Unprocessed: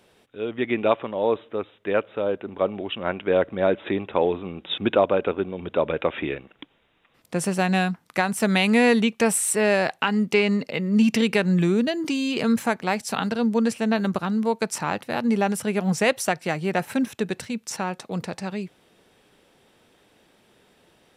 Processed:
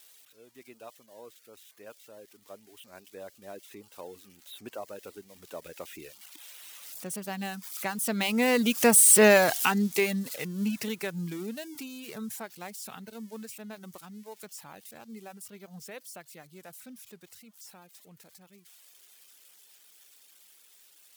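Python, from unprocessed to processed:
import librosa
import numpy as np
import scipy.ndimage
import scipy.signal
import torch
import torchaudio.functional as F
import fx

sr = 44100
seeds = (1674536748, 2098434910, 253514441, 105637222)

y = x + 0.5 * 10.0 ** (-18.0 / 20.0) * np.diff(np.sign(x), prepend=np.sign(x[:1]))
y = fx.doppler_pass(y, sr, speed_mps=14, closest_m=4.0, pass_at_s=9.22)
y = fx.dereverb_blind(y, sr, rt60_s=0.68)
y = F.gain(torch.from_numpy(y), 3.5).numpy()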